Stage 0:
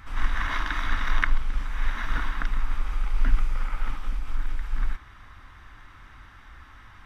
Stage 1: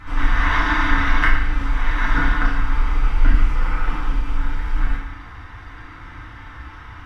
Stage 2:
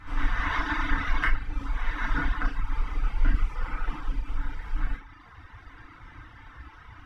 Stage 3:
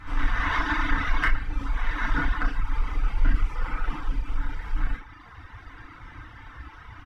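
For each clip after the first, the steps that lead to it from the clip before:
low-pass 3.1 kHz 6 dB/octave; in parallel at -9 dB: saturation -21.5 dBFS, distortion -10 dB; on the sum: FDN reverb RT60 0.82 s, low-frequency decay 1.05×, high-frequency decay 0.85×, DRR -6.5 dB; trim +2 dB
reverb removal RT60 1 s; trim -7 dB
in parallel at -6.5 dB: saturation -23.5 dBFS, distortion -10 dB; on the sum: echo from a far wall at 22 m, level -22 dB

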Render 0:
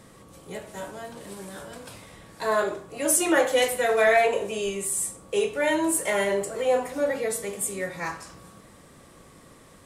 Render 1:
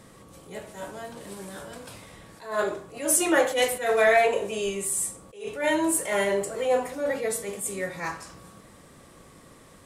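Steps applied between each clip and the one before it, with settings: attacks held to a fixed rise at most 130 dB/s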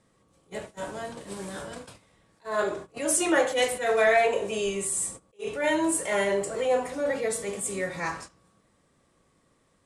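in parallel at -0.5 dB: compression, threshold -32 dBFS, peak gain reduction 15.5 dB; on the sum: gate -35 dBFS, range -18 dB; low-pass 10 kHz 24 dB/octave; trim -3 dB

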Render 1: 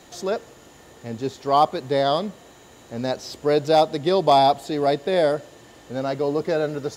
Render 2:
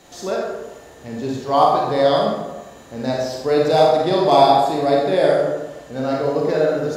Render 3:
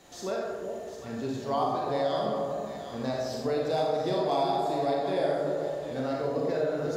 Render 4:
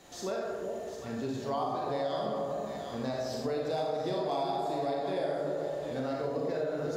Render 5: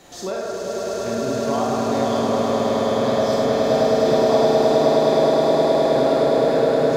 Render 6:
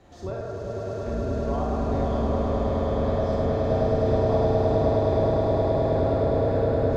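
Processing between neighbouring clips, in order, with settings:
reverberation RT60 1.1 s, pre-delay 28 ms, DRR -3 dB; trim -1 dB
compression 2.5:1, threshold -21 dBFS, peak gain reduction 9.5 dB; on a send: echo whose repeats swap between lows and highs 377 ms, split 810 Hz, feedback 54%, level -5 dB; on the sum: trim -7 dB
compression 2:1, threshold -32 dBFS, peak gain reduction 5.5 dB
echo with a slow build-up 104 ms, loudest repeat 8, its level -4.5 dB; trim +7.5 dB
octave divider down 2 oct, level +4 dB; low-pass 1.3 kHz 6 dB/octave; trim -6 dB

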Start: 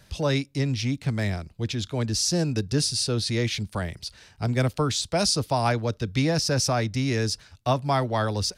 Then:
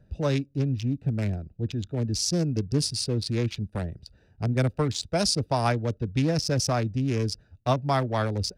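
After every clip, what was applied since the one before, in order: local Wiener filter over 41 samples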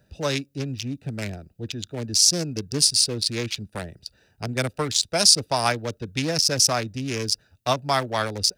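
tilt EQ +3 dB/octave; trim +3.5 dB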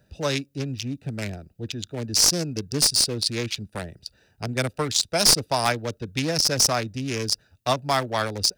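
one-sided wavefolder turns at -11 dBFS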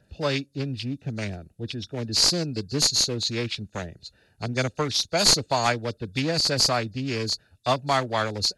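knee-point frequency compression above 3.4 kHz 1.5:1

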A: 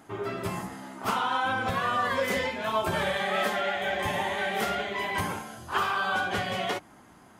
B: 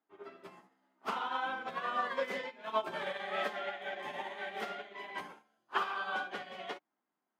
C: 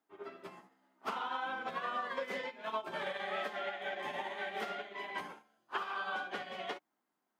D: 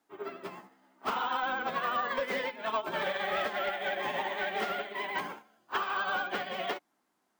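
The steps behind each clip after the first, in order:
high-pass 150 Hz 12 dB/octave; three-band isolator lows -20 dB, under 190 Hz, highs -13 dB, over 5.2 kHz; upward expansion 2.5:1, over -43 dBFS; trim -3.5 dB
compression 5:1, threshold -37 dBFS, peak gain reduction 10 dB; trim +2.5 dB
vibrato 11 Hz 47 cents; careless resampling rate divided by 2×, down none, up hold; saturation -30 dBFS, distortion -20 dB; trim +7.5 dB

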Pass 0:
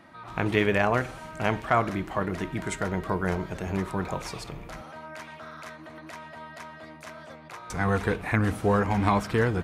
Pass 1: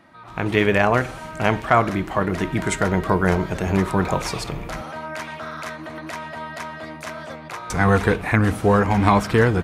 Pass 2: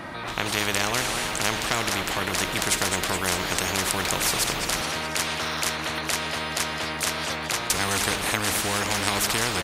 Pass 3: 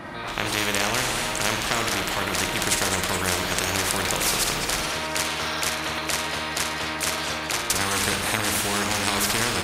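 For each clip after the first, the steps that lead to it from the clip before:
level rider gain up to 10 dB
frequency-shifting echo 210 ms, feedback 52%, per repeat +110 Hz, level -16.5 dB; spectrum-flattening compressor 4:1
flutter echo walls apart 9.3 m, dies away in 0.47 s; tape noise reduction on one side only decoder only

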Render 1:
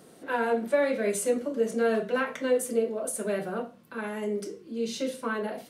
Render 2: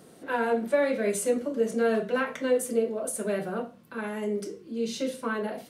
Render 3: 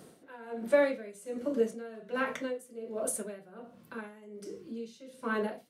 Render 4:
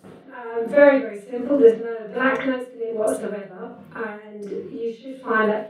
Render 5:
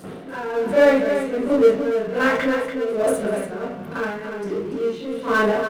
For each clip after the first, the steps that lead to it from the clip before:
peaking EQ 79 Hz +3.5 dB 2.5 oct
logarithmic tremolo 1.3 Hz, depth 21 dB
reverberation, pre-delay 37 ms, DRR -15 dB; trim -3 dB
power-law waveshaper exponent 0.7; multi-tap echo 190/287 ms -18.5/-8.5 dB; trim -3.5 dB

